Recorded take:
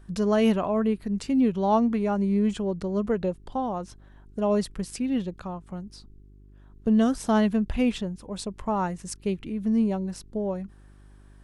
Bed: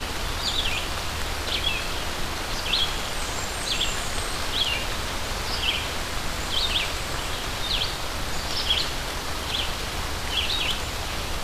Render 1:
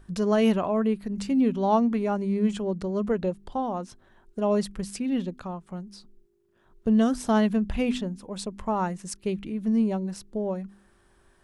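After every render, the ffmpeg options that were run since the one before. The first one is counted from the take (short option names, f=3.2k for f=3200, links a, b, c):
-af "bandreject=f=50:t=h:w=4,bandreject=f=100:t=h:w=4,bandreject=f=150:t=h:w=4,bandreject=f=200:t=h:w=4,bandreject=f=250:t=h:w=4,bandreject=f=300:t=h:w=4"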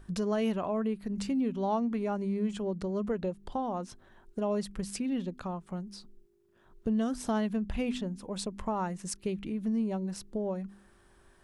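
-af "acompressor=threshold=-33dB:ratio=2"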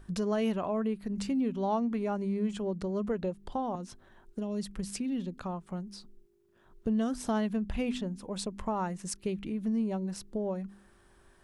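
-filter_complex "[0:a]asettb=1/sr,asplit=3[a][b][c];[a]atrim=end=3.754[d];[b]atrim=start=3.75:end=5.38,asetpts=PTS-STARTPTS,afade=t=in:d=0.004:c=qsin,afade=t=out:st=1.626:d=0.004:c=qsin,acrossover=split=350|3000[e][f][g];[f]acompressor=threshold=-46dB:ratio=3:attack=3.2:release=140:knee=2.83:detection=peak[h];[e][h][g]amix=inputs=3:normalize=0[i];[c]atrim=start=5.376[j];[d][i]acrossfade=d=0.004:c1=hsin:c2=qsin[k];[k][j]acrossfade=d=0.004:c1=qsin:c2=hsin"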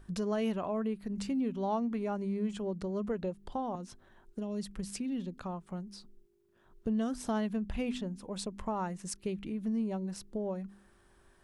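-af "volume=-2.5dB"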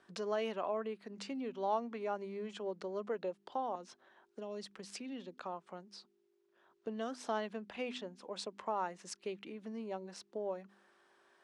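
-filter_complex "[0:a]highpass=220,acrossover=split=350 6700:gain=0.224 1 0.112[a][b][c];[a][b][c]amix=inputs=3:normalize=0"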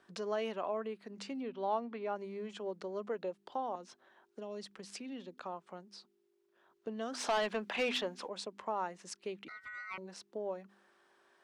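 -filter_complex "[0:a]asettb=1/sr,asplit=3[a][b][c];[a]atrim=end=1.434[d];[b]atrim=start=1.43:end=2.16,asetpts=PTS-STARTPTS,afade=t=in:d=0.004:c=qsin,afade=t=out:st=0.726:d=0.004:c=qsin,lowpass=f=4.7k:w=0.5412,lowpass=f=4.7k:w=1.3066[e];[c]atrim=start=2.156[f];[d][e]acrossfade=d=0.004:c1=hsin:c2=qsin[g];[g][f]acrossfade=d=0.004:c1=qsin:c2=hsin,asplit=3[h][i][j];[h]afade=t=out:st=7.13:d=0.02[k];[i]asplit=2[l][m];[m]highpass=f=720:p=1,volume=20dB,asoftclip=type=tanh:threshold=-23dB[n];[l][n]amix=inputs=2:normalize=0,lowpass=f=5.4k:p=1,volume=-6dB,afade=t=in:st=7.13:d=0.02,afade=t=out:st=8.27:d=0.02[o];[j]afade=t=in:st=8.27:d=0.02[p];[k][o][p]amix=inputs=3:normalize=0,asettb=1/sr,asplit=3[q][r][s];[q]atrim=end=9.484[t];[r]atrim=start=9.48:end=9.98,asetpts=PTS-STARTPTS,afade=t=in:d=0.004:c=qsin,afade=t=out:st=0.496:d=0.004:c=qsin,aeval=exprs='val(0)*sin(2*PI*1700*n/s)':c=same[u];[s]atrim=start=9.976[v];[t][u]acrossfade=d=0.004:c1=hsin:c2=qsin[w];[w][v]acrossfade=d=0.004:c1=qsin:c2=hsin"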